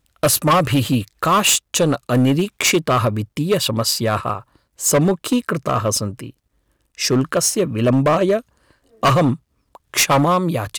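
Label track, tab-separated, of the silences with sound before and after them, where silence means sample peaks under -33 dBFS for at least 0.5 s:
6.300000	6.980000	silence
8.400000	9.030000	silence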